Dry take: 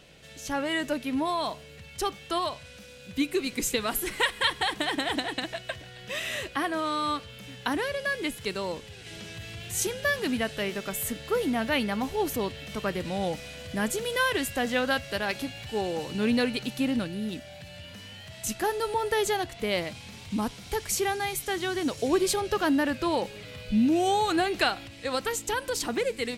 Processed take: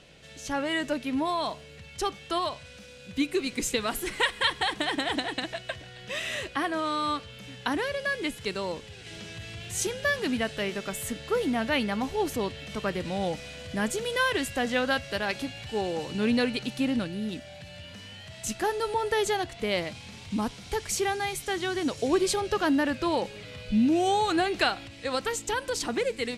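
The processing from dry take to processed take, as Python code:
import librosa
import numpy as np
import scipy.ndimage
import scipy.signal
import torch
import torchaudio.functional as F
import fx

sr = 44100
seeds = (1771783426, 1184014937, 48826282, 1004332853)

y = scipy.signal.sosfilt(scipy.signal.butter(2, 9600.0, 'lowpass', fs=sr, output='sos'), x)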